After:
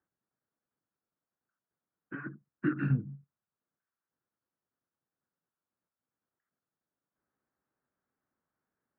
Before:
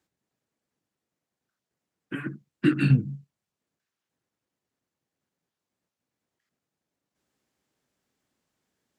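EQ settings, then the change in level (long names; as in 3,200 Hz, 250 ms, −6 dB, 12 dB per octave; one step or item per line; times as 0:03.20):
transistor ladder low-pass 1,700 Hz, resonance 45%
0.0 dB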